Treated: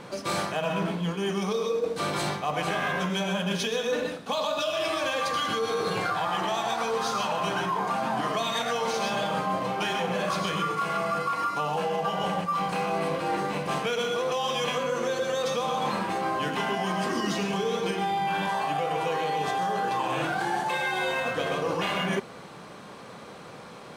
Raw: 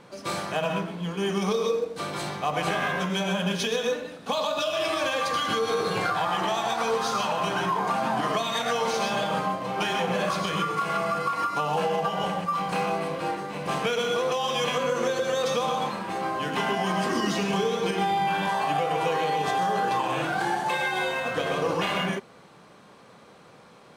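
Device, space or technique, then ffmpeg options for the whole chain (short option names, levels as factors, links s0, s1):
compression on the reversed sound: -af "areverse,acompressor=threshold=0.0251:ratio=10,areverse,volume=2.37"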